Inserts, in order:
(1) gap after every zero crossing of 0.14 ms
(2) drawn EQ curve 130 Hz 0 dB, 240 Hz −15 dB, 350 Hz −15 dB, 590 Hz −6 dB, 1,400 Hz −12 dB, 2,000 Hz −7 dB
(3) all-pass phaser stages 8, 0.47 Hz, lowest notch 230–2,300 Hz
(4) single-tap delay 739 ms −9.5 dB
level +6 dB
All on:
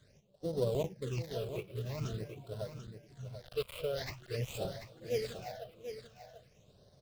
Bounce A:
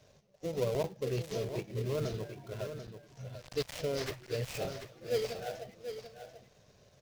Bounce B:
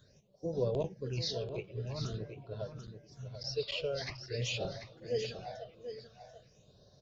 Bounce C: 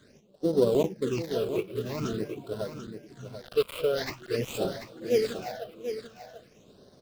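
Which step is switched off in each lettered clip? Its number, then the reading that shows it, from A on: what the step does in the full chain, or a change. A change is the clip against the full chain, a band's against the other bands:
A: 3, 125 Hz band −2.5 dB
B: 1, distortion level −9 dB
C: 2, change in momentary loudness spread +4 LU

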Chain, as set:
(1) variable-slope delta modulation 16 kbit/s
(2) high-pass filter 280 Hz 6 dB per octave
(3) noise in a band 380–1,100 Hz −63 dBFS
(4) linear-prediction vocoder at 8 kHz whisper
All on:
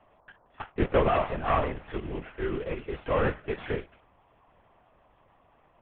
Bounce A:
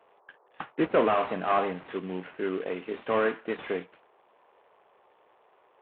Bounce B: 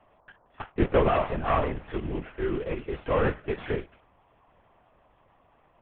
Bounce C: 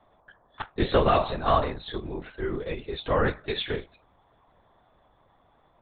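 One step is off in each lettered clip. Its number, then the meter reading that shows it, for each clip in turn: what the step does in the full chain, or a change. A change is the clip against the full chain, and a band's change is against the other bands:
4, 125 Hz band −11.0 dB
2, 250 Hz band +2.0 dB
1, 4 kHz band +9.0 dB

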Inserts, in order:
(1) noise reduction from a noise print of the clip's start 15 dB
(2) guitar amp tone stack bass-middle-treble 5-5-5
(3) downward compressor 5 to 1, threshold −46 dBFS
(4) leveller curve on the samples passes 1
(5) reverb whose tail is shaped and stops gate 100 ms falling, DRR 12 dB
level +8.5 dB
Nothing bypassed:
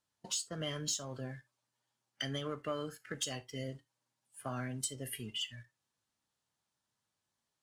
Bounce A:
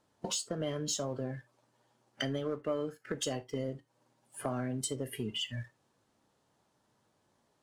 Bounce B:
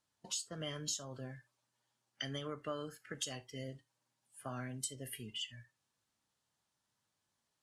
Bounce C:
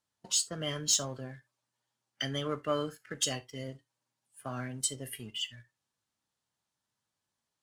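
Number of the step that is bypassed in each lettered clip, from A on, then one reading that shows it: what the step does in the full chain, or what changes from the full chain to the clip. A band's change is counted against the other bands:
2, 500 Hz band +5.0 dB
4, change in crest factor +3.5 dB
3, average gain reduction 2.5 dB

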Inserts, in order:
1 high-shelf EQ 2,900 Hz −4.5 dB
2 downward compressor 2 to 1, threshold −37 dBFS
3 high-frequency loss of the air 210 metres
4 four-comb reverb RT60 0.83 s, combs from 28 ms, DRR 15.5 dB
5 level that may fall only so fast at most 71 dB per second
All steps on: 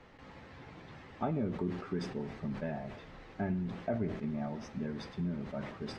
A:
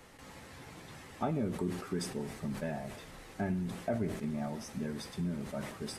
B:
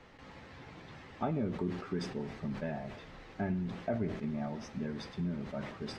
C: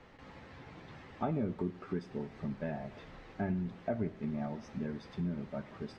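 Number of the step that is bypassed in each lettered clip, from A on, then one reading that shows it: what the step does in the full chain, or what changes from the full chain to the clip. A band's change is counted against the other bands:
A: 3, 4 kHz band +4.0 dB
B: 1, 4 kHz band +2.5 dB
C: 5, 4 kHz band −4.5 dB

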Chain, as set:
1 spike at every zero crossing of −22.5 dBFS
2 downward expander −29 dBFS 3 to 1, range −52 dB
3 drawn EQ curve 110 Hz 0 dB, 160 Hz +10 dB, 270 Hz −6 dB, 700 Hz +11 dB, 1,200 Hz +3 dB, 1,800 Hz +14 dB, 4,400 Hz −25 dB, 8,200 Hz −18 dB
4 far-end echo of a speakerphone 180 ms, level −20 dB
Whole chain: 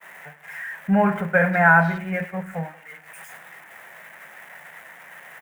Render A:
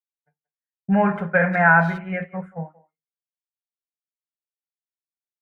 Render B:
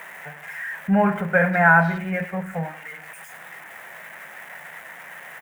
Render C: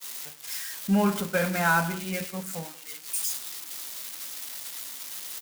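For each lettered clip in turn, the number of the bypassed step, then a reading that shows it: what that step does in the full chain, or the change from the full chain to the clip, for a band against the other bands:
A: 1, distortion level −4 dB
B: 2, change in momentary loudness spread +4 LU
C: 3, change in crest factor −2.0 dB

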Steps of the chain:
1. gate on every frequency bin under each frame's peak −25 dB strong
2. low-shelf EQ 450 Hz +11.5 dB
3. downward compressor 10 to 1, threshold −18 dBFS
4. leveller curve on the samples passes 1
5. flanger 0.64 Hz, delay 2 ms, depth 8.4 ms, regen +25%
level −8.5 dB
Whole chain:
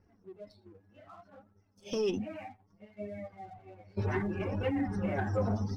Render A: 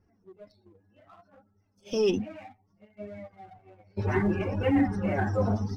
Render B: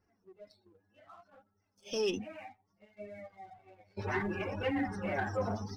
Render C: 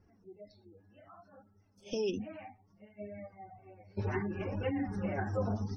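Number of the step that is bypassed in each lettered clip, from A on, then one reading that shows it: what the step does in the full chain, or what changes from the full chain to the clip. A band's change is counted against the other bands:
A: 3, average gain reduction 2.0 dB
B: 2, 125 Hz band −8.0 dB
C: 4, change in crest factor +2.0 dB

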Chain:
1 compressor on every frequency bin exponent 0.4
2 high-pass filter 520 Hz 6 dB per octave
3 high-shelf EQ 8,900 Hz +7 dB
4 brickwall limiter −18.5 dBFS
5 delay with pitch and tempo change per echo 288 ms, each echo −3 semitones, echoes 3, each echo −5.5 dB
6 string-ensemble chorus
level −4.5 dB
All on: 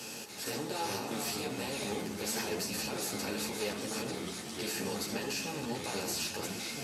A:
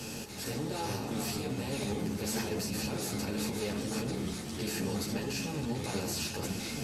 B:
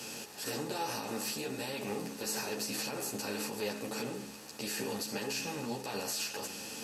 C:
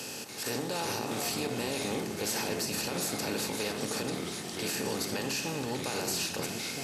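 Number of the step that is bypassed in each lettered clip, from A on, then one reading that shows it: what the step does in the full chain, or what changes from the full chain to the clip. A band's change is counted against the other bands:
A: 2, 125 Hz band +9.5 dB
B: 5, change in momentary loudness spread +1 LU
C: 6, change in integrated loudness +3.0 LU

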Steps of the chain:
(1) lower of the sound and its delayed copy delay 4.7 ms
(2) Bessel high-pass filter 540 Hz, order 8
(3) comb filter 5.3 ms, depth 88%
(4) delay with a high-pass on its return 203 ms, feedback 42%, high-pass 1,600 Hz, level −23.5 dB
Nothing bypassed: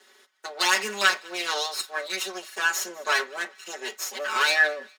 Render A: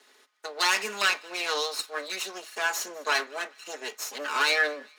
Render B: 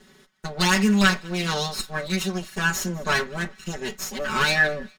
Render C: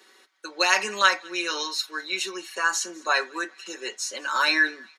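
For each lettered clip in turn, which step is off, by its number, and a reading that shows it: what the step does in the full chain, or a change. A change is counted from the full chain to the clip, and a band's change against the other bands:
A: 3, change in crest factor −2.5 dB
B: 2, 250 Hz band +19.5 dB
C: 1, 250 Hz band +6.0 dB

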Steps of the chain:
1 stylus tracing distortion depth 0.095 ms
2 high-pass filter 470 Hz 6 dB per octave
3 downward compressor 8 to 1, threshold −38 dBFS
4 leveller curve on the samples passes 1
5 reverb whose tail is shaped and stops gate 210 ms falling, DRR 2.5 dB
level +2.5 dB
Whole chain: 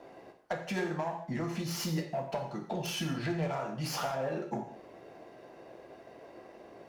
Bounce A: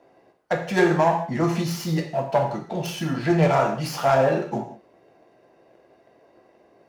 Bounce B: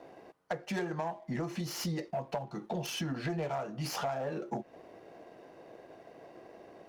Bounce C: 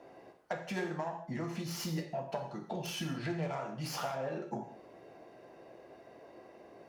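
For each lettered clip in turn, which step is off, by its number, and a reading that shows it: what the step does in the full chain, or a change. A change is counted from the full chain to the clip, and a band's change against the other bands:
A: 3, average gain reduction 7.0 dB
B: 5, change in integrated loudness −1.5 LU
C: 4, change in crest factor +3.0 dB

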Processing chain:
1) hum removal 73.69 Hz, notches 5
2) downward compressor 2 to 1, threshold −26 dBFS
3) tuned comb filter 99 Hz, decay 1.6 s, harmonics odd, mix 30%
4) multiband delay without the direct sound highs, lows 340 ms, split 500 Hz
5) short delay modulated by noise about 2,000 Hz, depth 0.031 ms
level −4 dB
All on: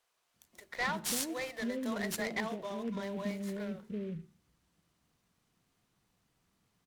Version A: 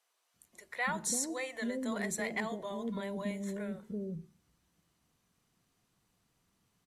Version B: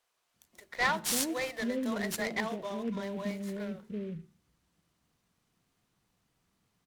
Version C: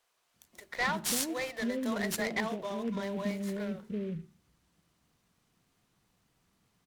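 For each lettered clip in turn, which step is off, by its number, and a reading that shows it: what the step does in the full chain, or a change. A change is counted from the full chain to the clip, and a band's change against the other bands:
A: 5, 4 kHz band −4.0 dB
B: 2, change in crest factor +3.0 dB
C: 3, change in integrated loudness +3.0 LU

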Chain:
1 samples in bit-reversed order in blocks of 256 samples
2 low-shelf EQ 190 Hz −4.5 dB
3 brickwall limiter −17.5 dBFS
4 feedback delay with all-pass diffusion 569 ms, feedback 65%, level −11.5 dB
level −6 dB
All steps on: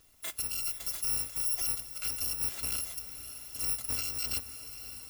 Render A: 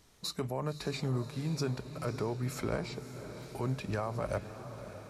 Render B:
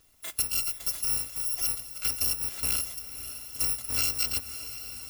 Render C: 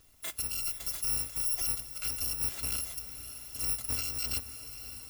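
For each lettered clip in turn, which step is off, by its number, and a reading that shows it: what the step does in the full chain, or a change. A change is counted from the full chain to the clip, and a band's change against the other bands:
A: 1, 8 kHz band −28.5 dB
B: 3, average gain reduction 2.0 dB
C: 2, 125 Hz band +3.5 dB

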